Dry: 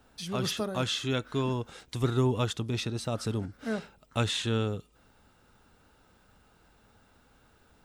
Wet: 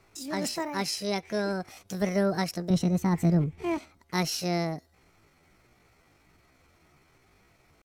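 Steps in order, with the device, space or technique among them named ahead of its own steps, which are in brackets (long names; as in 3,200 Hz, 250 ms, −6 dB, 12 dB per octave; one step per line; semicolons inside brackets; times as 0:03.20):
low-pass filter 9,700 Hz 12 dB per octave
chipmunk voice (pitch shifter +7.5 semitones)
0:02.70–0:03.78: bass and treble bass +14 dB, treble −5 dB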